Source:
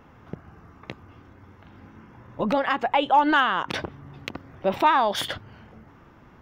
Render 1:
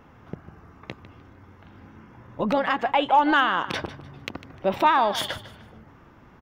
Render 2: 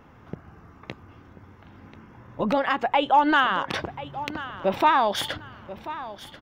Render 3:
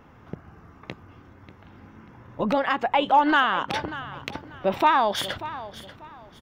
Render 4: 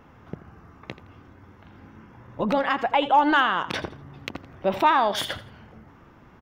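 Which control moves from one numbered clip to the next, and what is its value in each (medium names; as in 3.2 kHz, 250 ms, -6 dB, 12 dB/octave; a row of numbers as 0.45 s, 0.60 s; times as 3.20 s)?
feedback delay, time: 151 ms, 1037 ms, 589 ms, 83 ms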